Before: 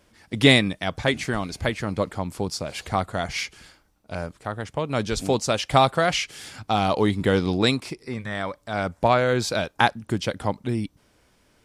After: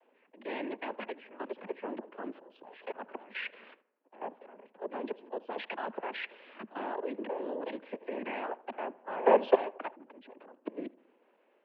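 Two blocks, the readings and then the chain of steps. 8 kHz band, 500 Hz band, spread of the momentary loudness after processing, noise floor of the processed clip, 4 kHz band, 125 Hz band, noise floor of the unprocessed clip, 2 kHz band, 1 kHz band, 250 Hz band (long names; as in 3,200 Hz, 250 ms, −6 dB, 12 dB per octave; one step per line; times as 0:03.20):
below −40 dB, −8.5 dB, 18 LU, −70 dBFS, −23.5 dB, below −35 dB, −63 dBFS, −16.0 dB, −12.0 dB, −16.0 dB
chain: noise gate −51 dBFS, range −10 dB
parametric band 460 Hz +14.5 dB 0.43 octaves
in parallel at 0 dB: downward compressor 16 to 1, threshold −24 dBFS, peak gain reduction 21 dB
on the sum: volume swells 399 ms
output level in coarse steps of 16 dB
cochlear-implant simulation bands 8
on a send: tape delay 78 ms, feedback 67%, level −20 dB, low-pass 1,600 Hz
on the sum: single-sideband voice off tune +70 Hz 160–2,900 Hz
level −3 dB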